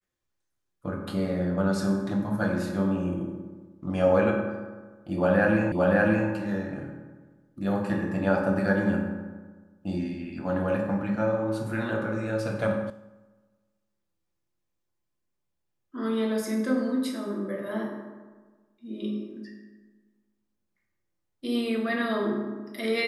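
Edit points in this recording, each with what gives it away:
0:05.72: the same again, the last 0.57 s
0:12.90: cut off before it has died away

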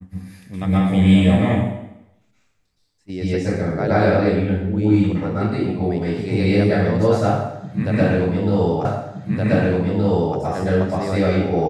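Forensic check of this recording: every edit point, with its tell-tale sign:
0:08.85: the same again, the last 1.52 s

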